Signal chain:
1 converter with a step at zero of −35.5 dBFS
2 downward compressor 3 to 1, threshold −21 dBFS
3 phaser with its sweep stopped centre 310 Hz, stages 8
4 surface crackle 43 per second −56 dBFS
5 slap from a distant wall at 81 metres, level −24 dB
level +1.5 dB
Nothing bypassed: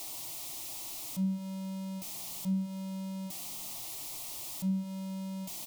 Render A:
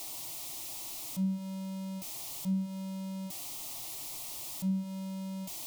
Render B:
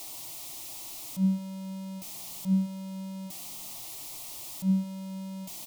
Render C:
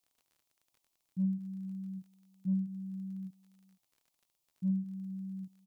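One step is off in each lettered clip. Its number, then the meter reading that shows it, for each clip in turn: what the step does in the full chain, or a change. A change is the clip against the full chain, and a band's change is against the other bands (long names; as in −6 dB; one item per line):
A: 5, echo-to-direct ratio −25.5 dB to none audible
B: 2, change in momentary loudness spread +5 LU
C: 1, distortion level −18 dB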